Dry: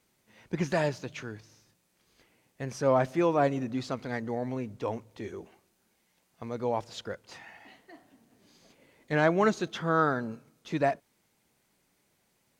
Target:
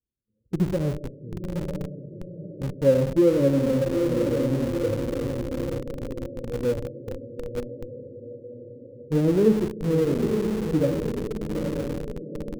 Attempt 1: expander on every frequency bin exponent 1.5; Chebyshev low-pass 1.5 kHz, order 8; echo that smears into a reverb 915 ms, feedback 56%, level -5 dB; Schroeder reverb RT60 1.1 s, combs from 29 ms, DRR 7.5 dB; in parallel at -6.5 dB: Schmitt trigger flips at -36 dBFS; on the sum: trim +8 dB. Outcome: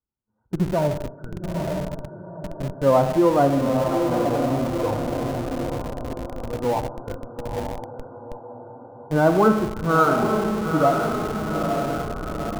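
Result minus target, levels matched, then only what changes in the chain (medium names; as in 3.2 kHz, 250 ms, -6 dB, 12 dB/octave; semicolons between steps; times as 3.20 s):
2 kHz band +8.0 dB
change: Chebyshev low-pass 560 Hz, order 8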